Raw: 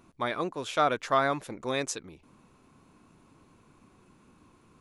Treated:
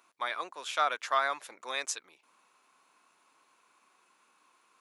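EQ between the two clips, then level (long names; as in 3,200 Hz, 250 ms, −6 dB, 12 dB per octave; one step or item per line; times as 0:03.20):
high-pass filter 930 Hz 12 dB per octave
0.0 dB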